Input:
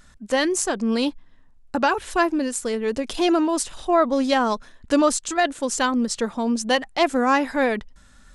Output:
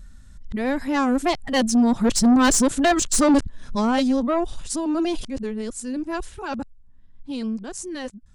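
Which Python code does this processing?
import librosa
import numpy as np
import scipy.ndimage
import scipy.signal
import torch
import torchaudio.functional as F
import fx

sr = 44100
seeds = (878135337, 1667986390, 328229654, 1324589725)

y = np.flip(x).copy()
y = fx.doppler_pass(y, sr, speed_mps=7, closest_m=4.0, pass_at_s=2.58)
y = fx.bass_treble(y, sr, bass_db=15, treble_db=4)
y = 10.0 ** (-17.5 / 20.0) * np.tanh(y / 10.0 ** (-17.5 / 20.0))
y = y * librosa.db_to_amplitude(5.5)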